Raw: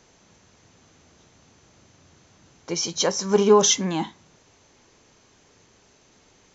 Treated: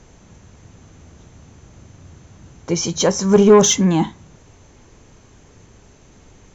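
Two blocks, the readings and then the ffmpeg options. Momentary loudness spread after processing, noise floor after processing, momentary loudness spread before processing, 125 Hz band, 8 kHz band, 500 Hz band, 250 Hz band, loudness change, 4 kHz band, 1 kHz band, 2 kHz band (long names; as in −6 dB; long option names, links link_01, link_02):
12 LU, −49 dBFS, 14 LU, +11.5 dB, can't be measured, +6.0 dB, +10.0 dB, +6.0 dB, +1.5 dB, +3.5 dB, +4.5 dB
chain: -af "aemphasis=mode=reproduction:type=bsi,aexciter=amount=4.3:drive=3.5:freq=6700,acontrast=78,volume=-1dB"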